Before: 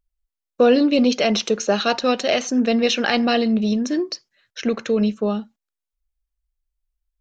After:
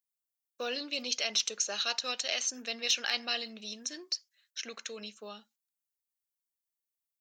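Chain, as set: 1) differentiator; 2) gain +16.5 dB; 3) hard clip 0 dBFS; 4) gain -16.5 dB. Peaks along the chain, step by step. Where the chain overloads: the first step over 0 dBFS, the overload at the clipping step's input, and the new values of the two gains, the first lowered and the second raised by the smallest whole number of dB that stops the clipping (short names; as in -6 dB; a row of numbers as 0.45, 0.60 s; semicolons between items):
-13.0, +3.5, 0.0, -16.5 dBFS; step 2, 3.5 dB; step 2 +12.5 dB, step 4 -12.5 dB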